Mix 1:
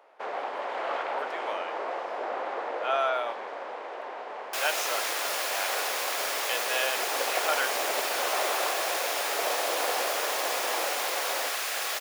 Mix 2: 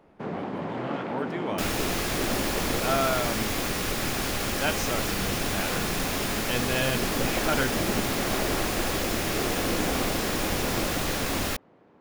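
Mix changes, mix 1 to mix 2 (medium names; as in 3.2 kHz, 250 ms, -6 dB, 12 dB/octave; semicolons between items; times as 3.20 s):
first sound -4.5 dB; second sound: entry -2.95 s; master: remove high-pass 550 Hz 24 dB/octave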